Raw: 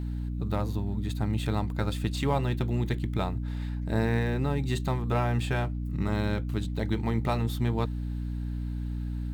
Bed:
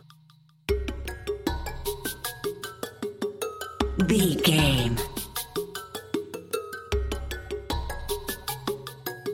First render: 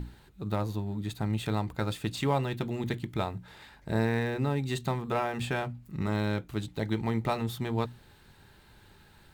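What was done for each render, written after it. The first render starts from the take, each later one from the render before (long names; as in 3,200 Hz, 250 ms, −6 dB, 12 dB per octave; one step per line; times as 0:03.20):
mains-hum notches 60/120/180/240/300 Hz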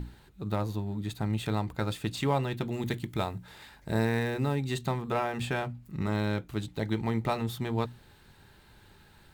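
0:02.72–0:04.56: high-shelf EQ 6,000 Hz +7 dB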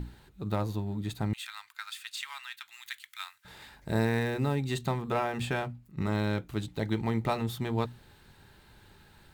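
0:01.33–0:03.45: inverse Chebyshev high-pass filter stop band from 530 Hz, stop band 50 dB
0:05.49–0:05.97: fade out equal-power, to −13 dB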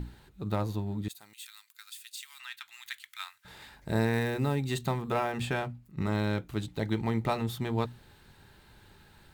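0:01.08–0:02.40: first difference
0:04.13–0:05.32: high-shelf EQ 10,000 Hz +5 dB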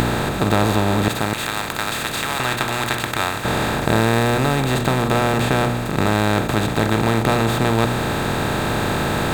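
compressor on every frequency bin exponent 0.2
in parallel at 0 dB: speech leveller 2 s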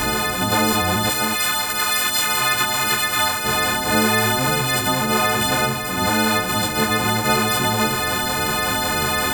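every partial snapped to a pitch grid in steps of 3 semitones
string-ensemble chorus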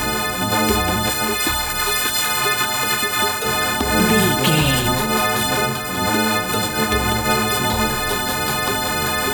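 mix in bed +2 dB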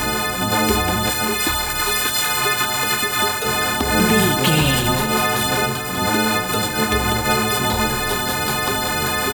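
repeating echo 330 ms, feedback 58%, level −16.5 dB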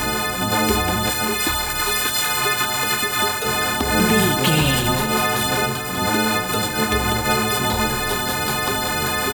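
level −1 dB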